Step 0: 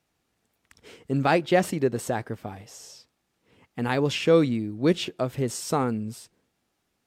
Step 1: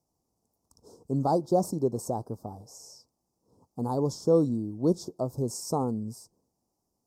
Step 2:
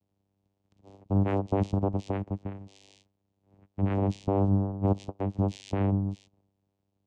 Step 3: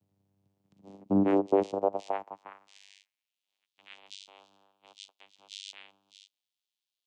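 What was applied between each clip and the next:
elliptic band-stop 990–5200 Hz, stop band 60 dB; gain -2.5 dB
limiter -20.5 dBFS, peak gain reduction 8.5 dB; vocoder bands 4, saw 98.4 Hz; gain +4 dB
high-pass sweep 120 Hz -> 3400 Hz, 0.49–3.52

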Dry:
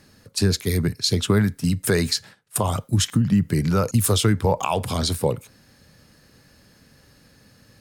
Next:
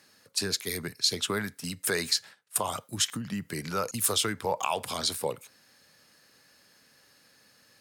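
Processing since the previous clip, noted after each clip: HPF 870 Hz 6 dB/oct; gain -2.5 dB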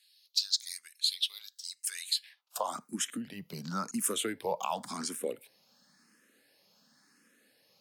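high-pass sweep 3700 Hz -> 210 Hz, 2.15–2.81; endless phaser +0.94 Hz; gain -3.5 dB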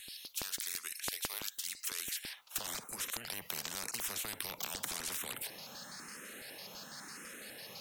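LFO notch square 6 Hz 300–4700 Hz; spectral compressor 10:1; gain -1 dB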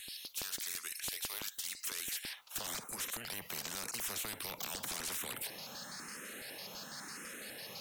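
soft clip -34 dBFS, distortion -11 dB; gain +2 dB

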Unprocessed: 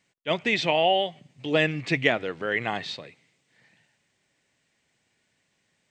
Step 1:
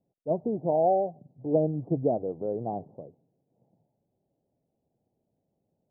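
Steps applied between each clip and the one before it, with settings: steep low-pass 780 Hz 48 dB/oct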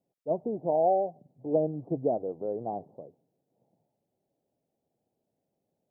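low shelf 190 Hz -10.5 dB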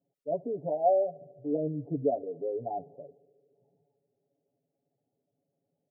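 spectral contrast raised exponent 1.6; comb 7.1 ms, depth 97%; narrowing echo 73 ms, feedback 85%, band-pass 390 Hz, level -24 dB; gain -3.5 dB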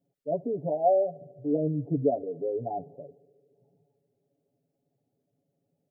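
low shelf 330 Hz +7.5 dB

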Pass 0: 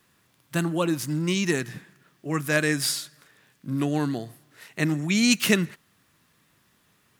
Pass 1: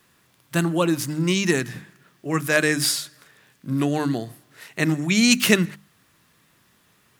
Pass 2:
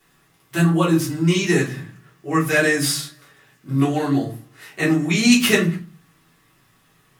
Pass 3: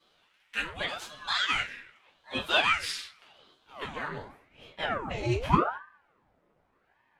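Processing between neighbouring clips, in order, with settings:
notches 50/100/150/200/250/300 Hz; gain +4 dB
shoebox room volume 140 m³, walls furnished, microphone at 3.4 m; gain -6 dB
band-pass sweep 2400 Hz -> 480 Hz, 3.61–5.64; ring modulator with a swept carrier 750 Hz, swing 85%, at 0.85 Hz; gain +3.5 dB

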